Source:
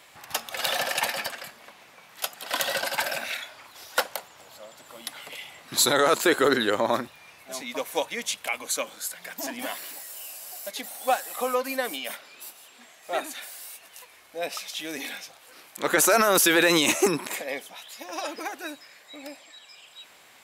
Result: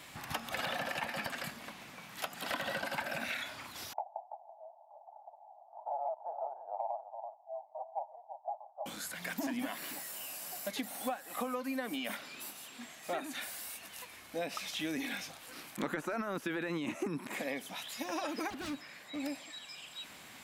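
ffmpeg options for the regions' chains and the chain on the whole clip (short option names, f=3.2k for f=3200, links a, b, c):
-filter_complex "[0:a]asettb=1/sr,asplit=3[a][b][c];[a]atrim=end=3.934[d];[b]atrim=start=3.93:end=8.86,asetpts=PTS-STARTPTS,afade=t=in:d=0.004:c=qsin,afade=t=out:st=4.926:d=0.004:c=qsin,asuperpass=centerf=750:order=8:qfactor=2.9,aecho=1:1:333:0.224,atrim=end_sample=217413[e];[c]atrim=start=8.856[f];[d][e]acrossfade=d=0.004:c1=hsin:c2=qsin[g];[g][f]acrossfade=d=0.004:c1=qsin:c2=hsin,asettb=1/sr,asplit=3[h][i][j];[h]atrim=end=18.504[k];[i]atrim=start=18.5:end=19.2,asetpts=PTS-STARTPTS,afade=t=in:d=0.004:c=qsin,afade=t=out:st=0.696:d=0.004:c=qsin,acrossover=split=3400[l][m];[m]acompressor=threshold=-58dB:ratio=4:attack=1:release=60[n];[l][n]amix=inputs=2:normalize=0,aeval=exprs='0.0141*(abs(mod(val(0)/0.0141+3,4)-2)-1)':c=same,highpass=42[o];[j]atrim=start=19.196[p];[k][o]acrossfade=d=0.004:c1=hsin:c2=qsin[q];[q][p]acrossfade=d=0.004:c1=qsin:c2=hsin,acrossover=split=2700[r][s];[s]acompressor=threshold=-41dB:ratio=4:attack=1:release=60[t];[r][t]amix=inputs=2:normalize=0,lowshelf=f=330:t=q:w=1.5:g=7,acompressor=threshold=-34dB:ratio=16,volume=1dB"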